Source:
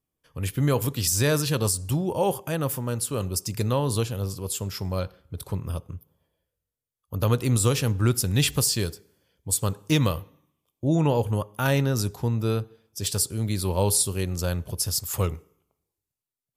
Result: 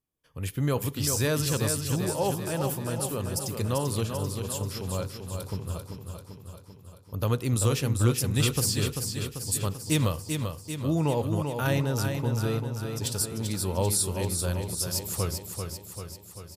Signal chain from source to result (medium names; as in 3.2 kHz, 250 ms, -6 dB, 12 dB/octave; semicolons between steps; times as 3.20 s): feedback delay 391 ms, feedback 60%, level -6 dB; trim -4 dB